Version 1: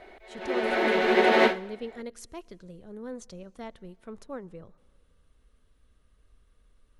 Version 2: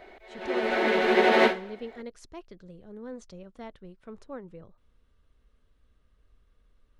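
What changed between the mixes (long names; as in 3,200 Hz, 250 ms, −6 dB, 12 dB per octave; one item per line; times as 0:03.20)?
speech: add high-frequency loss of the air 67 metres
reverb: off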